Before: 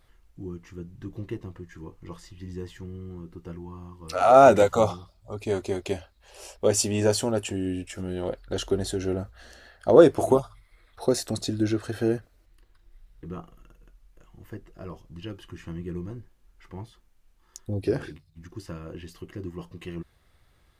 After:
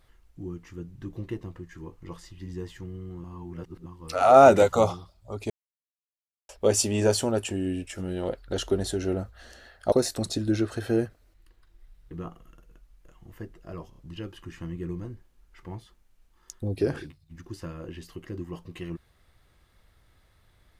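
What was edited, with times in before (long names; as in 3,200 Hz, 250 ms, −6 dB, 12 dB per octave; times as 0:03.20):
0:03.24–0:03.86: reverse
0:05.50–0:06.49: silence
0:09.92–0:11.04: remove
0:15.02: stutter 0.03 s, 3 plays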